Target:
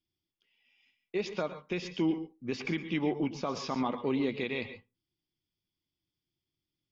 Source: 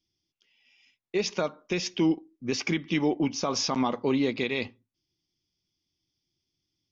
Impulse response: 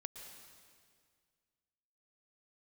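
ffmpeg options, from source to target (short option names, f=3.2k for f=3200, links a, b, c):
-filter_complex "[0:a]equalizer=f=5.9k:t=o:w=0.64:g=-12.5[a];[1:a]atrim=start_sample=2205,afade=t=out:st=0.19:d=0.01,atrim=end_sample=8820[b];[a][b]afir=irnorm=-1:irlink=0"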